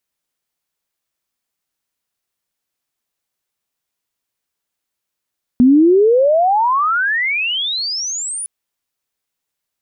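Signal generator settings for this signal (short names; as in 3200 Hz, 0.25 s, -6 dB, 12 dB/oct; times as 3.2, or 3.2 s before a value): chirp logarithmic 240 Hz -> 10000 Hz -5.5 dBFS -> -21.5 dBFS 2.86 s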